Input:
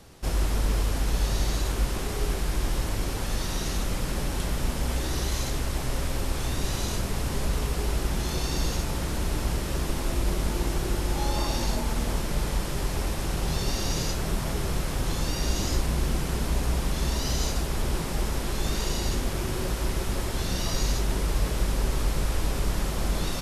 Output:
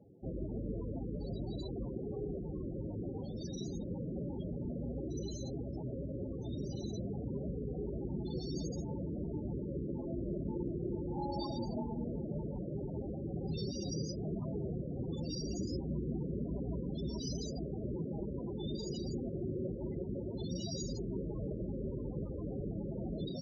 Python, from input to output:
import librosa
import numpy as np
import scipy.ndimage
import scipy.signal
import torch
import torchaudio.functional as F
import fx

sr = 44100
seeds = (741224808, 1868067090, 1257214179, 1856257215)

y = scipy.signal.sosfilt(scipy.signal.butter(2, 130.0, 'highpass', fs=sr, output='sos'), x)
y = fx.peak_eq(y, sr, hz=1200.0, db=-4.0, octaves=1.9)
y = fx.spec_topn(y, sr, count=16)
y = y * 10.0 ** (-3.0 / 20.0)